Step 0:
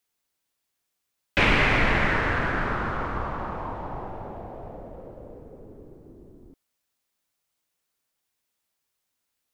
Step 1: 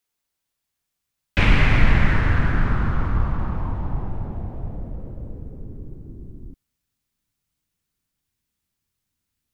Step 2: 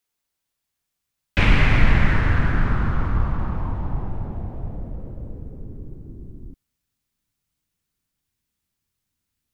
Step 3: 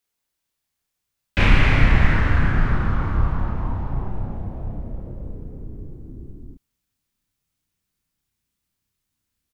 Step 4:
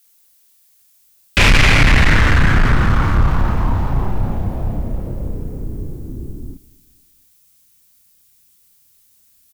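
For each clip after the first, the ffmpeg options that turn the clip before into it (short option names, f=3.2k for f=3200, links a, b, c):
-af "asubboost=boost=7:cutoff=210,volume=-1dB"
-af anull
-filter_complex "[0:a]asplit=2[a][b];[b]adelay=31,volume=-3dB[c];[a][c]amix=inputs=2:normalize=0,volume=-1dB"
-af "crystalizer=i=4:c=0,asoftclip=type=tanh:threshold=-15dB,aecho=1:1:235|470|705:0.0794|0.0342|0.0147,volume=9dB"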